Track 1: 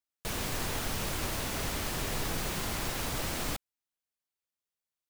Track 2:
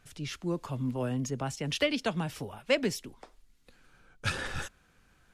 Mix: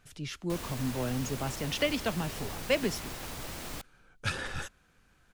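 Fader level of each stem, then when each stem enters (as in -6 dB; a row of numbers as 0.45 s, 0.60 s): -6.5 dB, -1.0 dB; 0.25 s, 0.00 s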